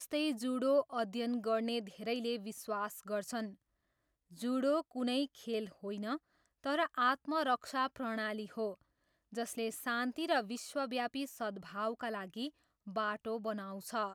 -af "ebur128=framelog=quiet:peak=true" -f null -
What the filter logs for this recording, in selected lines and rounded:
Integrated loudness:
  I:         -37.2 LUFS
  Threshold: -47.4 LUFS
Loudness range:
  LRA:         3.4 LU
  Threshold: -57.7 LUFS
  LRA low:   -39.6 LUFS
  LRA high:  -36.2 LUFS
True peak:
  Peak:      -19.6 dBFS